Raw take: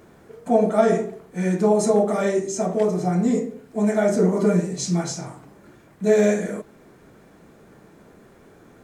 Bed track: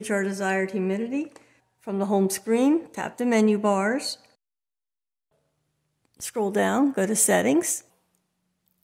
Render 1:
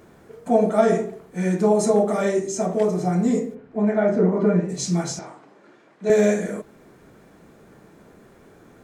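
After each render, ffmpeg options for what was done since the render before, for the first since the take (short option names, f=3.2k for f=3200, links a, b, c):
-filter_complex "[0:a]asplit=3[a][b][c];[a]afade=t=out:st=3.54:d=0.02[d];[b]lowpass=2.3k,afade=t=in:st=3.54:d=0.02,afade=t=out:st=4.68:d=0.02[e];[c]afade=t=in:st=4.68:d=0.02[f];[d][e][f]amix=inputs=3:normalize=0,asettb=1/sr,asplit=3[g][h][i];[g]atrim=end=5.194[j];[h]atrim=start=5.19:end=6.1,asetpts=PTS-STARTPTS,afade=t=in:d=0.004:c=qsin,afade=t=out:st=0.906:d=0.004:c=qsin,highpass=310,lowpass=5.1k[k];[i]atrim=start=6.096[l];[j][k]acrossfade=d=0.004:c1=hsin:c2=qsin[m];[m][l]acrossfade=d=0.004:c1=qsin:c2=hsin"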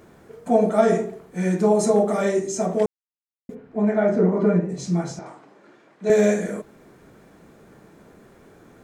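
-filter_complex "[0:a]asettb=1/sr,asplit=3[a][b][c];[a]atrim=end=4.584[d];[b]atrim=start=4.58:end=5.26,asetpts=PTS-STARTPTS,afade=t=in:d=0.004:c=qsin,afade=t=out:st=0.676:d=0.004:c=qsin,highshelf=f=2.4k:g=-10.5[e];[c]atrim=start=5.256[f];[d][e]acrossfade=d=0.004:c1=hsin:c2=qsin[g];[g][f]acrossfade=d=0.004:c1=qsin:c2=hsin,asplit=3[h][i][j];[h]atrim=end=2.86,asetpts=PTS-STARTPTS,afade=t=out:st=2.856:d=0.004:c=hsin[k];[i]atrim=start=2.86:end=3.49,asetpts=PTS-STARTPTS,volume=0[l];[j]atrim=start=3.49,asetpts=PTS-STARTPTS,afade=t=in:d=0.004:c=hsin[m];[k][l][m]concat=n=3:v=0:a=1"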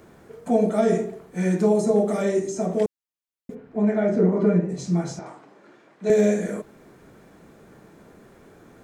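-filter_complex "[0:a]acrossover=split=650|1600[a][b][c];[b]acompressor=threshold=-37dB:ratio=6[d];[c]alimiter=level_in=4.5dB:limit=-24dB:level=0:latency=1:release=209,volume=-4.5dB[e];[a][d][e]amix=inputs=3:normalize=0"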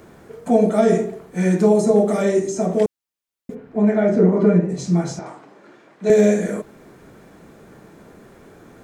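-af "volume=4.5dB"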